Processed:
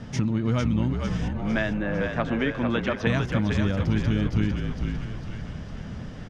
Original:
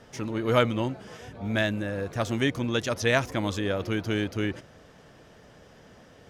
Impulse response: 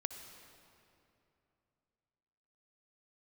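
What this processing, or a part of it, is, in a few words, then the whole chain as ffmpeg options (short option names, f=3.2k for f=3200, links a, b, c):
jukebox: -filter_complex "[0:a]asettb=1/sr,asplit=3[a][b][c];[a]atrim=end=1.284[d];[b]atrim=start=1.28:end=3.07,asetpts=PTS-STARTPTS,afade=t=in:d=0.004:c=qsin,afade=t=out:st=1.786:d=0.004:c=qsin,acrossover=split=320 2900:gain=0.0891 1 0.0891[e][f][g];[e][f][g]amix=inputs=3:normalize=0[h];[c]atrim=start=3.066[i];[d][h]acrossfade=d=0.004:c1=hsin:c2=qsin[j];[j][i]acrossfade=d=0.004:c1=qsin:c2=hsin,lowpass=6.4k,lowshelf=f=290:t=q:w=1.5:g=10,acompressor=threshold=-28dB:ratio=6,asplit=8[k][l][m][n][o][p][q][r];[l]adelay=452,afreqshift=-47,volume=-5dB[s];[m]adelay=904,afreqshift=-94,volume=-10.4dB[t];[n]adelay=1356,afreqshift=-141,volume=-15.7dB[u];[o]adelay=1808,afreqshift=-188,volume=-21.1dB[v];[p]adelay=2260,afreqshift=-235,volume=-26.4dB[w];[q]adelay=2712,afreqshift=-282,volume=-31.8dB[x];[r]adelay=3164,afreqshift=-329,volume=-37.1dB[y];[k][s][t][u][v][w][x][y]amix=inputs=8:normalize=0,volume=6.5dB"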